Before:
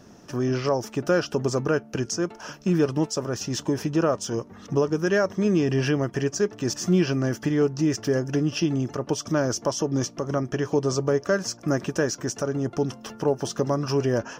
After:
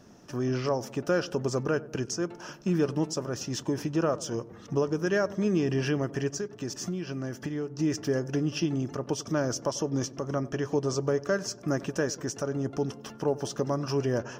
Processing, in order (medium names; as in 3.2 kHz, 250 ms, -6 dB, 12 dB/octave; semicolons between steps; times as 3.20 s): 6.31–7.80 s: compression 6:1, threshold -26 dBFS, peak gain reduction 10 dB; filtered feedback delay 94 ms, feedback 66%, low-pass 840 Hz, level -17 dB; trim -4.5 dB